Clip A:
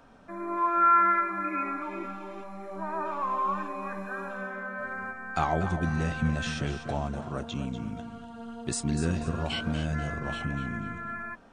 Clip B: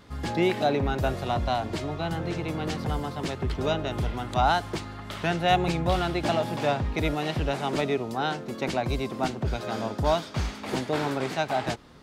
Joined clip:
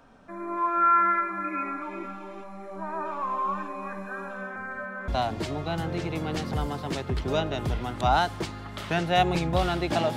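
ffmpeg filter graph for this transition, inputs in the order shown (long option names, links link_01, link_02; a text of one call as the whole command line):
ffmpeg -i cue0.wav -i cue1.wav -filter_complex "[0:a]apad=whole_dur=10.16,atrim=end=10.16,asplit=2[link_01][link_02];[link_01]atrim=end=4.562[link_03];[link_02]atrim=start=4.558:end=5.082,asetpts=PTS-STARTPTS,areverse[link_04];[1:a]atrim=start=1.408:end=6.49[link_05];[link_03][link_04]acrossfade=duration=0.004:curve1=hsin:curve2=hsin[link_06];[link_06][link_05]acrossfade=duration=0.004:curve1=hsin:curve2=hsin" out.wav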